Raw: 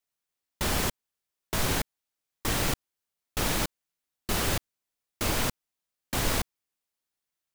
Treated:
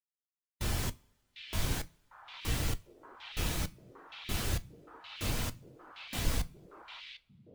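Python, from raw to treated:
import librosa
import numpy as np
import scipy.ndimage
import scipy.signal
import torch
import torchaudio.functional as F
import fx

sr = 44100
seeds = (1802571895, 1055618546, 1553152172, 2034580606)

y = fx.octave_divider(x, sr, octaves=1, level_db=0.0)
y = fx.high_shelf(y, sr, hz=2200.0, db=6.0)
y = fx.echo_stepped(y, sr, ms=751, hz=2900.0, octaves=-1.4, feedback_pct=70, wet_db=-1.5)
y = fx.rev_double_slope(y, sr, seeds[0], early_s=0.44, late_s=4.0, knee_db=-18, drr_db=11.5)
y = fx.spectral_expand(y, sr, expansion=1.5)
y = y * 10.0 ** (-8.0 / 20.0)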